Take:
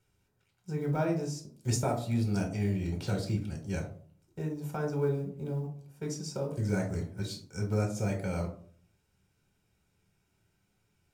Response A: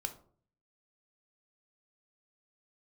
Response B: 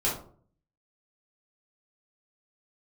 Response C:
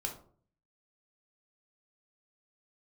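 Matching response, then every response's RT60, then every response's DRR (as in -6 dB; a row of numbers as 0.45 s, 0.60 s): C; 0.50 s, 0.50 s, 0.50 s; 6.5 dB, -7.0 dB, 1.5 dB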